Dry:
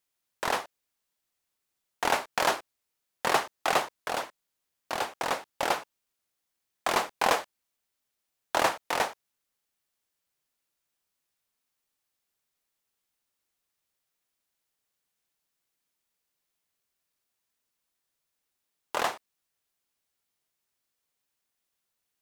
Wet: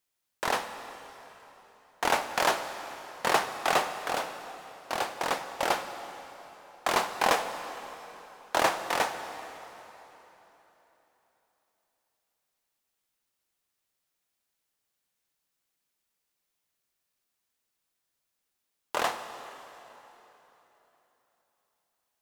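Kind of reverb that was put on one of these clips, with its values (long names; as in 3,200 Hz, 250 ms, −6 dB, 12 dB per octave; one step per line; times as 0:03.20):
dense smooth reverb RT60 3.7 s, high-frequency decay 0.85×, DRR 8 dB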